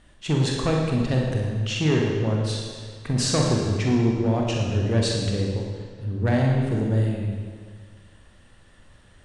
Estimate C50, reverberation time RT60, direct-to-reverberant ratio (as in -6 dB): 0.5 dB, 1.8 s, -1.5 dB